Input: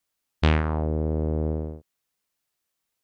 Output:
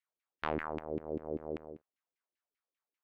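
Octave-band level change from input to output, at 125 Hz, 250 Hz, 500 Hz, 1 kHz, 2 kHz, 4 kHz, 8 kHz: -24.0 dB, -13.0 dB, -8.5 dB, -7.5 dB, -10.0 dB, under -15 dB, n/a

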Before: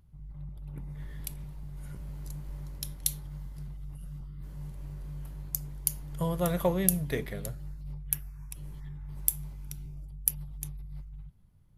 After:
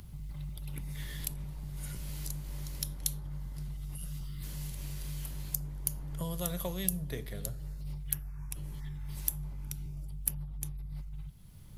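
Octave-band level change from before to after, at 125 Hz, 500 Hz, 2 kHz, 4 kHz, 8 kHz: -1.5, -10.0, -4.5, +0.5, -3.5 dB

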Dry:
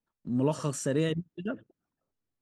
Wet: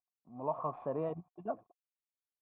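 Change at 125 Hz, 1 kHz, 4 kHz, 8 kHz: -15.0 dB, +2.0 dB, under -30 dB, under -40 dB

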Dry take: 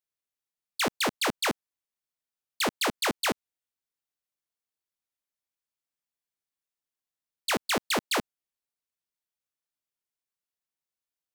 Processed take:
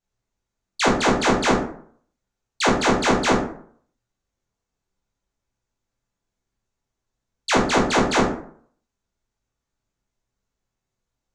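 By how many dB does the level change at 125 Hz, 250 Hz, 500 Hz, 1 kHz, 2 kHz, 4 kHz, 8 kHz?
+15.5, +13.0, +12.0, +10.5, +7.0, +4.0, +5.0 dB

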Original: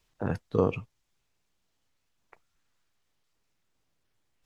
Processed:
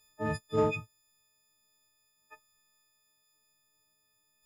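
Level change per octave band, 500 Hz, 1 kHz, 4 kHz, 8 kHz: -1.5 dB, +1.5 dB, +5.0 dB, n/a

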